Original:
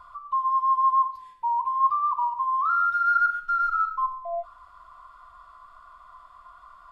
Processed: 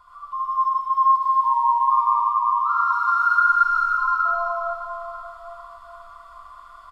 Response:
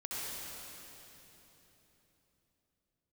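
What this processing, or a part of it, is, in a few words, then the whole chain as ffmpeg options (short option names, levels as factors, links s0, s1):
cave: -filter_complex "[0:a]aecho=1:1:379:0.398[s0];[1:a]atrim=start_sample=2205[s1];[s0][s1]afir=irnorm=-1:irlink=0,highshelf=f=2800:g=7.5"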